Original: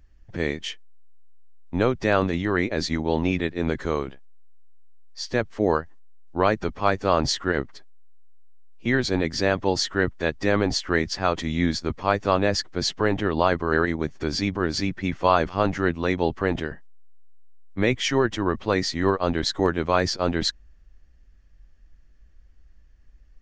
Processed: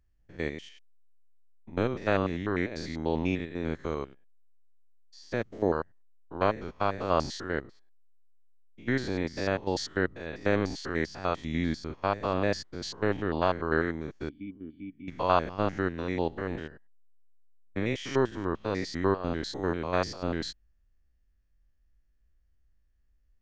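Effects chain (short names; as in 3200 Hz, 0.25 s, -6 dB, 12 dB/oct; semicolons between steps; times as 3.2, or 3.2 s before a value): stepped spectrum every 0.1 s; 14.29–15.08 vocal tract filter i; upward expander 1.5:1, over -42 dBFS; gain -2.5 dB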